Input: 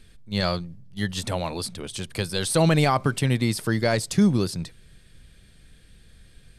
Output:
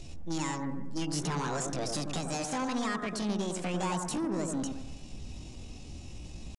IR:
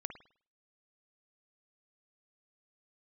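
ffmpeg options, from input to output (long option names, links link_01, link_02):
-filter_complex "[0:a]acompressor=threshold=-31dB:ratio=10,asetrate=70004,aresample=44100,atempo=0.629961,asoftclip=type=tanh:threshold=-36.5dB,aresample=22050,aresample=44100[link_01];[1:a]atrim=start_sample=2205,asetrate=23814,aresample=44100[link_02];[link_01][link_02]afir=irnorm=-1:irlink=0,volume=6.5dB"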